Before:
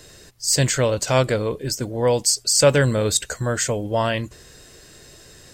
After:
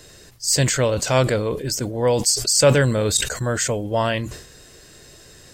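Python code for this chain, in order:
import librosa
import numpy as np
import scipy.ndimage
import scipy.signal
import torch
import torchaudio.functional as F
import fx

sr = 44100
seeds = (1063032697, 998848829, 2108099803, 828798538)

y = fx.sustainer(x, sr, db_per_s=82.0)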